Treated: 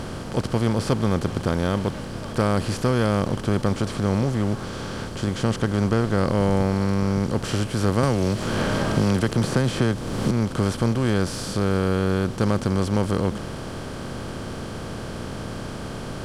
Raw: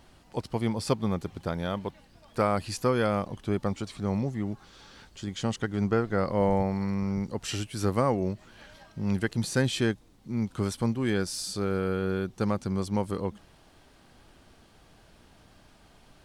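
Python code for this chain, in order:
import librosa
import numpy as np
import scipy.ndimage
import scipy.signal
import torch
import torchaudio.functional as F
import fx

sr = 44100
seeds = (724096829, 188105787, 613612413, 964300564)

y = fx.bin_compress(x, sr, power=0.4)
y = fx.low_shelf(y, sr, hz=270.0, db=9.0)
y = fx.band_squash(y, sr, depth_pct=100, at=(8.03, 10.31))
y = y * 10.0 ** (-3.5 / 20.0)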